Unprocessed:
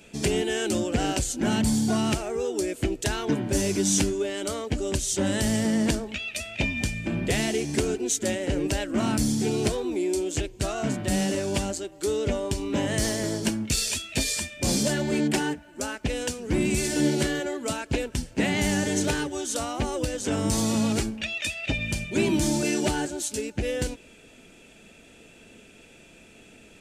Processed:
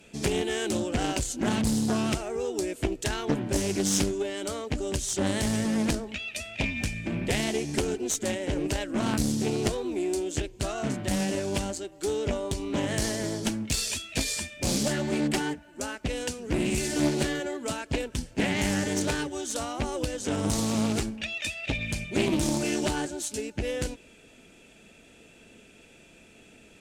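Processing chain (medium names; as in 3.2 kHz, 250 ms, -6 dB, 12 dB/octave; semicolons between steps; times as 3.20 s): Chebyshev shaper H 2 -6 dB, 8 -31 dB, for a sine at -10 dBFS; loudspeaker Doppler distortion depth 0.34 ms; trim -2.5 dB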